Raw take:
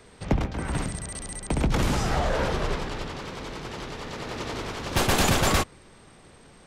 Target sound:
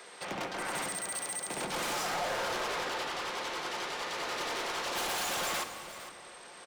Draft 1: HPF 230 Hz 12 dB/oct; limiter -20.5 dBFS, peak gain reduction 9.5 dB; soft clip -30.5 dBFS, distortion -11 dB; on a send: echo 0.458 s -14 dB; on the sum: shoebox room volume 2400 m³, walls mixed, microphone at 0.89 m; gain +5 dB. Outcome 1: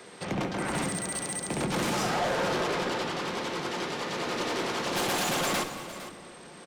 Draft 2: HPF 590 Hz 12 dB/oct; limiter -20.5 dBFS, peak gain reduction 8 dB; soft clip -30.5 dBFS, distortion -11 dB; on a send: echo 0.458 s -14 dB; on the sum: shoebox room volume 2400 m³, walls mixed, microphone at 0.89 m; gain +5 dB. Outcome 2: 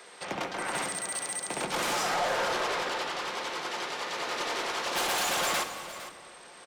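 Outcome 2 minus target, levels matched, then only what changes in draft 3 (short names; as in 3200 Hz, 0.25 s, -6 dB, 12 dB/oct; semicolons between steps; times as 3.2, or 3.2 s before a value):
soft clip: distortion -5 dB
change: soft clip -37.5 dBFS, distortion -6 dB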